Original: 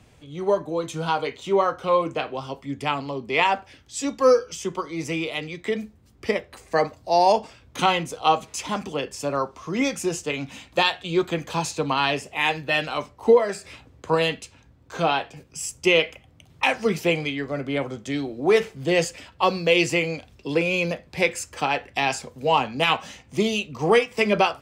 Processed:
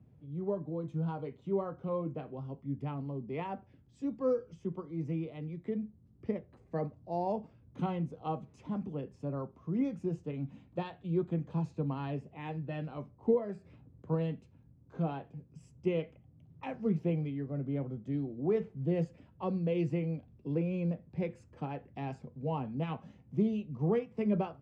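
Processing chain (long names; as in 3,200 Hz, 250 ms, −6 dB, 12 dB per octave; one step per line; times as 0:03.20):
resonant band-pass 150 Hz, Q 1.4
level −1 dB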